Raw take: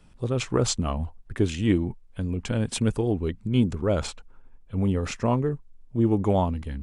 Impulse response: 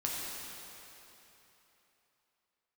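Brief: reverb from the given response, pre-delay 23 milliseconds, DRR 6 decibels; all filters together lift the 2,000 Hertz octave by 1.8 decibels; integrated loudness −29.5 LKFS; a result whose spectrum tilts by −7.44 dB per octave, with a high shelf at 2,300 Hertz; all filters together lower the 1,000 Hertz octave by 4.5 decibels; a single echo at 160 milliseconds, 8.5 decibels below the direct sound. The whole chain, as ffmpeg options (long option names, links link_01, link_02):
-filter_complex "[0:a]equalizer=frequency=1000:width_type=o:gain=-6.5,equalizer=frequency=2000:width_type=o:gain=8.5,highshelf=frequency=2300:gain=-8,aecho=1:1:160:0.376,asplit=2[link_01][link_02];[1:a]atrim=start_sample=2205,adelay=23[link_03];[link_02][link_03]afir=irnorm=-1:irlink=0,volume=-11dB[link_04];[link_01][link_04]amix=inputs=2:normalize=0,volume=-4dB"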